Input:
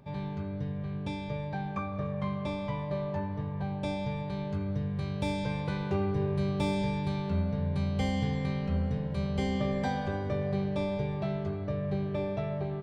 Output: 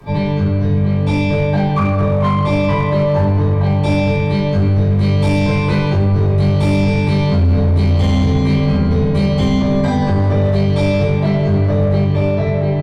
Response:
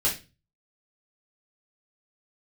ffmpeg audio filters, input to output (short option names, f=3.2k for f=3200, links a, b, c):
-filter_complex "[0:a]asettb=1/sr,asplit=3[a][b][c];[a]atrim=end=10.354[d];[b]atrim=start=10.35:end=11.01,asetpts=PTS-STARTPTS,afade=t=in:d=0.004:c=qsin,afade=t=out:st=0.656:d=0.004:c=qsin,highshelf=f=3.3k:g=8.5[e];[c]atrim=start=11.006[f];[d][e]acrossfade=d=0.004:c1=hsin:c2=qsin[g];[g][f]acrossfade=d=0.004:c1=qsin:c2=hsin,aecho=1:1:20|45|76.25|115.3|164.1:0.631|0.398|0.251|0.158|0.1,acrossover=split=110|1200[h][i][j];[i]crystalizer=i=8:c=0[k];[h][k][j]amix=inputs=3:normalize=0,acrossover=split=210[l][m];[m]acompressor=threshold=-31dB:ratio=4[n];[l][n]amix=inputs=2:normalize=0[o];[1:a]atrim=start_sample=2205,asetrate=34839,aresample=44100[p];[o][p]afir=irnorm=-1:irlink=0,dynaudnorm=f=140:g=13:m=3dB,asplit=2[q][r];[r]aeval=exprs='0.237*(abs(mod(val(0)/0.237+3,4)-2)-1)':c=same,volume=-5dB[s];[q][s]amix=inputs=2:normalize=0,alimiter=limit=-11.5dB:level=0:latency=1:release=79,volume=3dB"